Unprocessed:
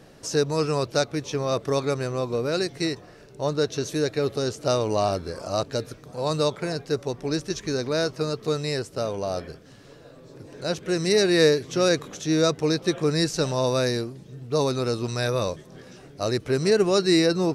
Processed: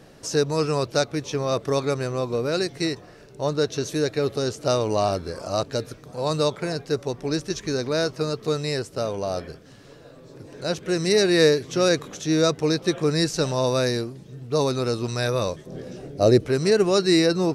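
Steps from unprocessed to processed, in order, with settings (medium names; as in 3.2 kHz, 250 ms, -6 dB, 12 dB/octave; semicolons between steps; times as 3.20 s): 15.66–16.46 s: resonant low shelf 770 Hz +7.5 dB, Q 1.5; trim +1 dB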